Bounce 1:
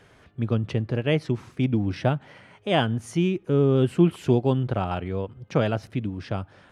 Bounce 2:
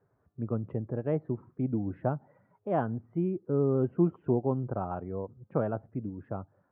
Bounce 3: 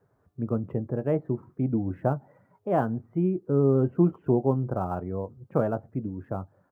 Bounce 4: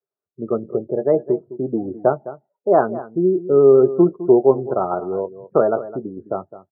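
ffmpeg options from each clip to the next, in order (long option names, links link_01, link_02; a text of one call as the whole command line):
ffmpeg -i in.wav -af "afftdn=noise_reduction=12:noise_floor=-42,lowpass=frequency=1300:width=0.5412,lowpass=frequency=1300:width=1.3066,lowshelf=frequency=74:gain=-12,volume=-5.5dB" out.wav
ffmpeg -i in.wav -filter_complex "[0:a]acrossover=split=1300[link_01][link_02];[link_01]asplit=2[link_03][link_04];[link_04]adelay=22,volume=-12dB[link_05];[link_03][link_05]amix=inputs=2:normalize=0[link_06];[link_02]acrusher=bits=5:mode=log:mix=0:aa=0.000001[link_07];[link_06][link_07]amix=inputs=2:normalize=0,volume=4dB" out.wav
ffmpeg -i in.wav -filter_complex "[0:a]afftdn=noise_reduction=34:noise_floor=-38,highpass=250,equalizer=frequency=260:width_type=q:width=4:gain=-5,equalizer=frequency=390:width_type=q:width=4:gain=9,equalizer=frequency=630:width_type=q:width=4:gain=5,equalizer=frequency=1300:width_type=q:width=4:gain=6,lowpass=frequency=2100:width=0.5412,lowpass=frequency=2100:width=1.3066,asplit=2[link_01][link_02];[link_02]adelay=209.9,volume=-15dB,highshelf=frequency=4000:gain=-4.72[link_03];[link_01][link_03]amix=inputs=2:normalize=0,volume=6.5dB" out.wav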